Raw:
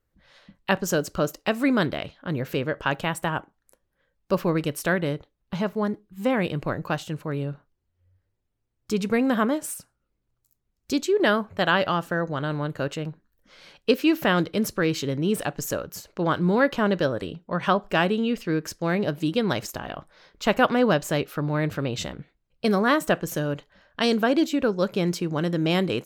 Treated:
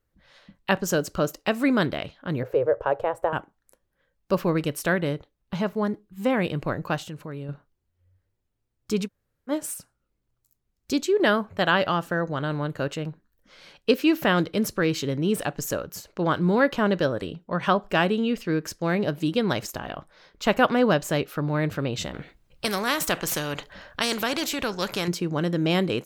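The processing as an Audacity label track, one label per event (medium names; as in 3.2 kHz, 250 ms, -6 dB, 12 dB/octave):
2.430000	3.330000	FFT filter 120 Hz 0 dB, 180 Hz -26 dB, 480 Hz +10 dB, 3.1 kHz -17 dB
7.090000	7.490000	compression 2:1, threshold -36 dBFS
9.060000	9.500000	room tone, crossfade 0.06 s
22.140000	25.080000	spectrum-flattening compressor 2:1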